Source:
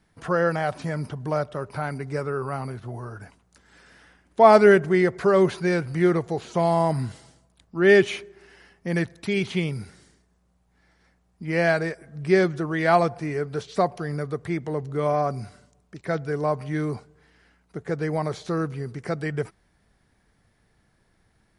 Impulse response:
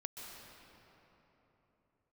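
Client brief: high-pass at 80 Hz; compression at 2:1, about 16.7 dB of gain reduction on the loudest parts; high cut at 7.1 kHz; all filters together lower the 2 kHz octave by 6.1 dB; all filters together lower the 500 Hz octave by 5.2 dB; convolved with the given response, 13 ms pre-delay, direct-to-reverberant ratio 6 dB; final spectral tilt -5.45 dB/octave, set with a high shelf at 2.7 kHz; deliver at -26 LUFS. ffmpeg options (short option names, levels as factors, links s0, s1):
-filter_complex "[0:a]highpass=80,lowpass=7100,equalizer=f=500:t=o:g=-7,equalizer=f=2000:t=o:g=-5.5,highshelf=f=2700:g=-4.5,acompressor=threshold=0.00562:ratio=2,asplit=2[s0][s1];[1:a]atrim=start_sample=2205,adelay=13[s2];[s1][s2]afir=irnorm=-1:irlink=0,volume=0.631[s3];[s0][s3]amix=inputs=2:normalize=0,volume=4.73"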